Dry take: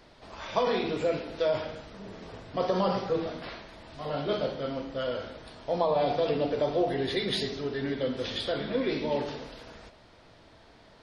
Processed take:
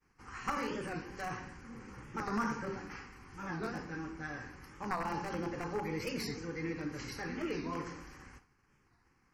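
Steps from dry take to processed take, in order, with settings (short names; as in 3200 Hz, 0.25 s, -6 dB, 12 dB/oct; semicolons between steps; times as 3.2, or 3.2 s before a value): one-sided fold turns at -20.5 dBFS; expander -47 dBFS; fixed phaser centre 1300 Hz, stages 4; wide varispeed 1.18×; record warp 45 rpm, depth 160 cents; gain -2 dB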